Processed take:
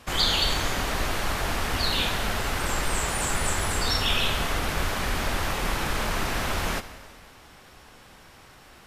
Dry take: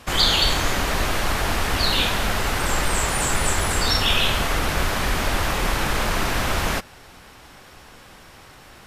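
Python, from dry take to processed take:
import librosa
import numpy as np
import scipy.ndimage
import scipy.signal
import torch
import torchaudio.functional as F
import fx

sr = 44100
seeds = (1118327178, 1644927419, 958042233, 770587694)

y = fx.rev_plate(x, sr, seeds[0], rt60_s=1.8, hf_ratio=0.95, predelay_ms=0, drr_db=11.5)
y = y * 10.0 ** (-5.0 / 20.0)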